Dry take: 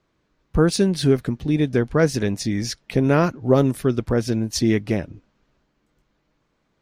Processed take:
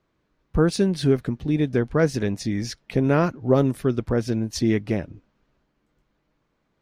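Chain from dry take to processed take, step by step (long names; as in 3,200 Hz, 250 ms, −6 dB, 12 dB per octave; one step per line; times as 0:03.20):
high-shelf EQ 4,200 Hz −5.5 dB
level −2 dB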